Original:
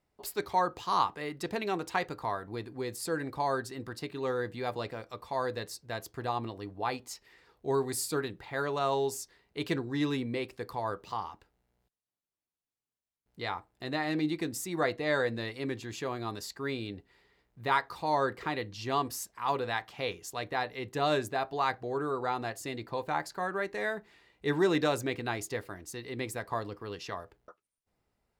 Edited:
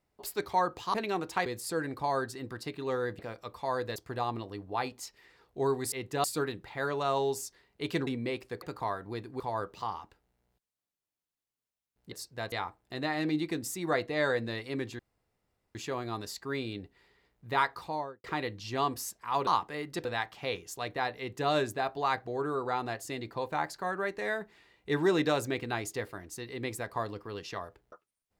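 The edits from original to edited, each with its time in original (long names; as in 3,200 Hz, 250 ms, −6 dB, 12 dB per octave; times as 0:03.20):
0:00.94–0:01.52: move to 0:19.61
0:02.04–0:02.82: move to 0:10.70
0:04.55–0:04.87: remove
0:05.64–0:06.04: move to 0:13.42
0:09.83–0:10.15: remove
0:15.89: splice in room tone 0.76 s
0:17.89–0:18.38: fade out and dull
0:20.74–0:21.06: duplicate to 0:08.00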